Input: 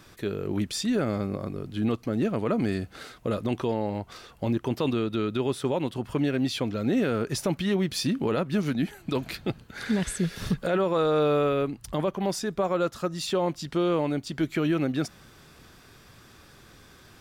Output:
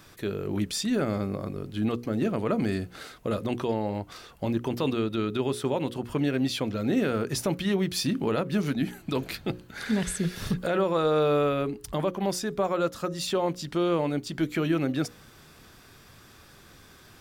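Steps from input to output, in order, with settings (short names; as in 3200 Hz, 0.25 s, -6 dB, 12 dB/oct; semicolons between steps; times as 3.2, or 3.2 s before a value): high shelf 12000 Hz +5.5 dB; notches 60/120/180/240/300/360/420/480/540 Hz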